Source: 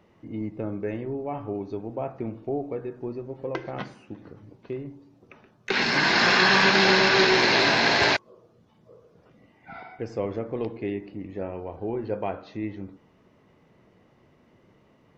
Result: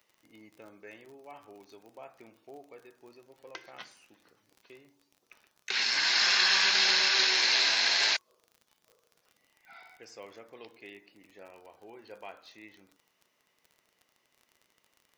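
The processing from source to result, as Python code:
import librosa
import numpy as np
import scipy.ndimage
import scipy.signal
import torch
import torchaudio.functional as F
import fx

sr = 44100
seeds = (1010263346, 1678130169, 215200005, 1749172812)

y = np.diff(x, prepend=0.0)
y = fx.dmg_crackle(y, sr, seeds[0], per_s=37.0, level_db=-50.0)
y = F.gain(torch.from_numpy(y), 4.5).numpy()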